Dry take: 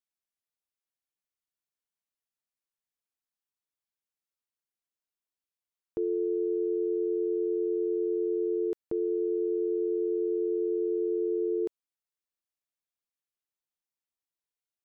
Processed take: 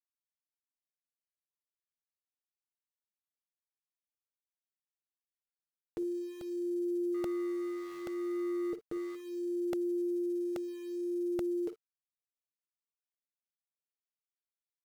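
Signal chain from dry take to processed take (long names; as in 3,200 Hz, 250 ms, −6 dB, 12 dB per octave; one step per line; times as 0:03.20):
0:07.14–0:09.15: running median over 41 samples
notch filter 440 Hz, Q 12
brickwall limiter −35 dBFS, peak gain reduction 11.5 dB
flanger 0.35 Hz, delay 6.2 ms, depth 2.1 ms, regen −42%
centre clipping without the shift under −59.5 dBFS
ambience of single reflections 44 ms −17.5 dB, 55 ms −15 dB
regular buffer underruns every 0.83 s, samples 64, repeat, from 0:00.60
one half of a high-frequency compander encoder only
level +8.5 dB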